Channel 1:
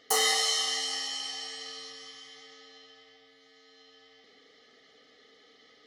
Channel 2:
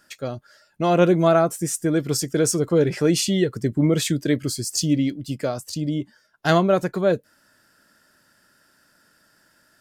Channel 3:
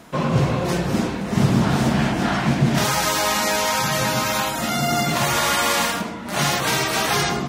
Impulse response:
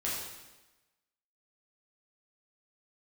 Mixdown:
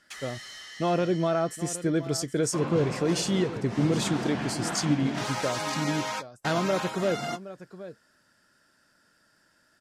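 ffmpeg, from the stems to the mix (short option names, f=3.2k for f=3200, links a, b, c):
-filter_complex "[0:a]highpass=f=1.6k:t=q:w=11,asoftclip=type=hard:threshold=-26.5dB,volume=-14.5dB[a];[1:a]alimiter=limit=-12dB:level=0:latency=1:release=198,volume=-5dB,asplit=3[b][c][d];[c]volume=-14.5dB[e];[2:a]highpass=f=270:p=1,highshelf=f=5k:g=-5.5,adelay=2400,volume=-10dB[f];[d]apad=whole_len=435861[g];[f][g]sidechaingate=range=-58dB:threshold=-52dB:ratio=16:detection=peak[h];[e]aecho=0:1:769:1[i];[a][b][h][i]amix=inputs=4:normalize=0,lowpass=9.3k"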